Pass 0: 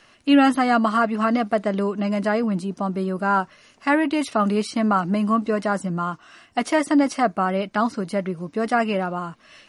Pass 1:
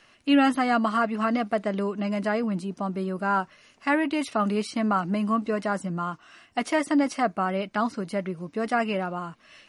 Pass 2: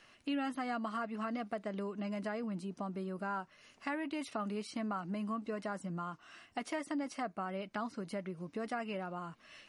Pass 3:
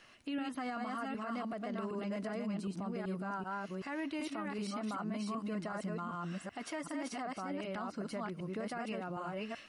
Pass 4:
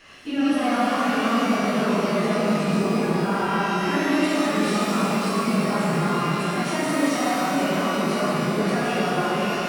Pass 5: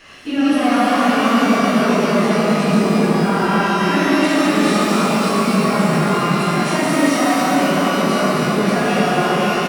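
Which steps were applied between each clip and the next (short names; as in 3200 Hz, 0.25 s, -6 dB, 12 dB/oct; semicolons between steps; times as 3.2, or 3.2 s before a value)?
bell 2400 Hz +2.5 dB; gain -4.5 dB
compressor 2.5:1, threshold -35 dBFS, peak gain reduction 12.5 dB; gain -4.5 dB
reverse delay 0.382 s, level -2 dB; limiter -32.5 dBFS, peak gain reduction 10 dB; gain +1.5 dB
phase scrambler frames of 50 ms; shimmer reverb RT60 2.9 s, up +12 st, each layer -8 dB, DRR -8 dB; gain +8 dB
echo 0.257 s -6 dB; gain +5.5 dB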